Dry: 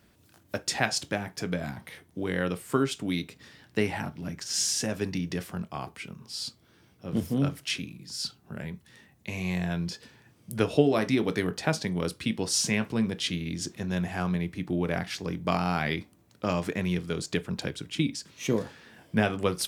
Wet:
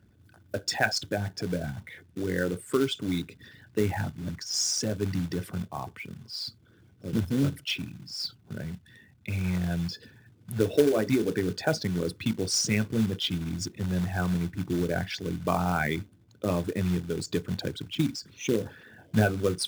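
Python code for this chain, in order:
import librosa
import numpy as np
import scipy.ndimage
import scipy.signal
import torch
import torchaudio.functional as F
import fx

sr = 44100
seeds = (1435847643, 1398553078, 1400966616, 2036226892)

y = fx.envelope_sharpen(x, sr, power=2.0)
y = scipy.signal.sosfilt(scipy.signal.butter(2, 42.0, 'highpass', fs=sr, output='sos'), y)
y = fx.peak_eq(y, sr, hz=100.0, db=8.0, octaves=0.51)
y = fx.quant_float(y, sr, bits=2)
y = fx.small_body(y, sr, hz=(1500.0, 3500.0), ring_ms=45, db=9)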